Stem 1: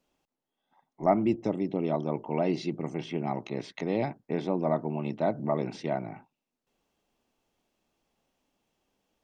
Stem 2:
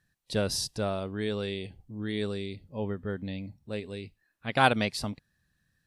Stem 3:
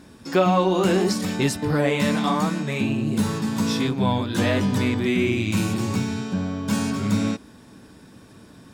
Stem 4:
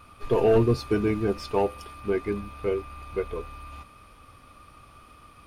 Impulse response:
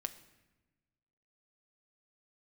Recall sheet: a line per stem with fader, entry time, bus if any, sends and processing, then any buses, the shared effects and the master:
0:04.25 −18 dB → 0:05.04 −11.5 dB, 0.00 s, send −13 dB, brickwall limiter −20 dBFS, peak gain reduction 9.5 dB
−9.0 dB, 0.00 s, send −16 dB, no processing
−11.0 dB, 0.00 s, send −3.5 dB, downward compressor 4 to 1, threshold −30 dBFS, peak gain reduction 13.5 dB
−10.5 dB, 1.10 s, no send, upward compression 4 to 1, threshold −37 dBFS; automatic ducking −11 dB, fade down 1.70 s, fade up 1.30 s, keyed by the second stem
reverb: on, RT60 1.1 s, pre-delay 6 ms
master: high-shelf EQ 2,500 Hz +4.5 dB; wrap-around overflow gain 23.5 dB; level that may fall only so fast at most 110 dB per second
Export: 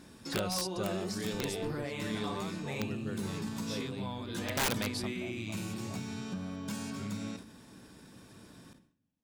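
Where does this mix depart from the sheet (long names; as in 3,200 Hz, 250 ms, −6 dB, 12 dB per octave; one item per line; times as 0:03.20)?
stem 1 −18.0 dB → −29.0 dB
stem 4: missing upward compression 4 to 1, threshold −37 dBFS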